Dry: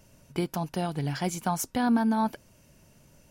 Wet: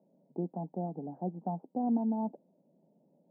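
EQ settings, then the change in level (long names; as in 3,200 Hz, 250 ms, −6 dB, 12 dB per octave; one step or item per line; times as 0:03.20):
Chebyshev band-pass filter 170–810 Hz, order 4
−5.0 dB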